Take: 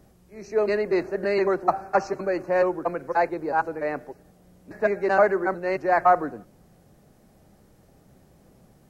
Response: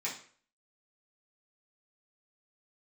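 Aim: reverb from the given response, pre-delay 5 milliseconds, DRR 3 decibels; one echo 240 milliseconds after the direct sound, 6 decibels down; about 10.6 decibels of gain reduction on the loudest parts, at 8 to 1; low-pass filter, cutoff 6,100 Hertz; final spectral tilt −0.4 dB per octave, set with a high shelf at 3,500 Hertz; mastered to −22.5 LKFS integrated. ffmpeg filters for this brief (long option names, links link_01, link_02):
-filter_complex "[0:a]lowpass=6100,highshelf=frequency=3500:gain=3.5,acompressor=threshold=-24dB:ratio=8,aecho=1:1:240:0.501,asplit=2[link_01][link_02];[1:a]atrim=start_sample=2205,adelay=5[link_03];[link_02][link_03]afir=irnorm=-1:irlink=0,volume=-7dB[link_04];[link_01][link_04]amix=inputs=2:normalize=0,volume=5.5dB"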